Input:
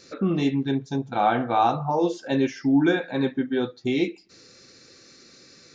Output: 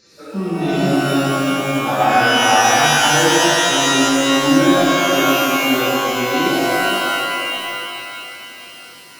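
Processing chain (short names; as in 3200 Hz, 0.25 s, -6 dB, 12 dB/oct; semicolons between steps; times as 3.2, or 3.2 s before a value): time stretch by phase-locked vocoder 1.6×; shimmer reverb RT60 3.1 s, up +12 st, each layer -2 dB, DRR -8 dB; gain -3 dB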